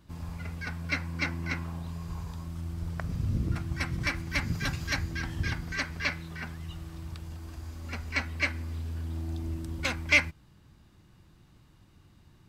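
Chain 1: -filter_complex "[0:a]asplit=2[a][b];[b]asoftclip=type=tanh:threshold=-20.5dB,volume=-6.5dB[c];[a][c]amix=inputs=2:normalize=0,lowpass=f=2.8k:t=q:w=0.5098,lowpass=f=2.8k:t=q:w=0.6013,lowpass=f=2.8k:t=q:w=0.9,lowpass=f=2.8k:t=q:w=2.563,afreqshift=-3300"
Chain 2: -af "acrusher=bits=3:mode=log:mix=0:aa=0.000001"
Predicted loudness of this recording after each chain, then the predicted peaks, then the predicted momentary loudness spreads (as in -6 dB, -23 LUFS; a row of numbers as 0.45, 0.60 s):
-27.5, -32.5 LUFS; -7.0, -7.0 dBFS; 10, 11 LU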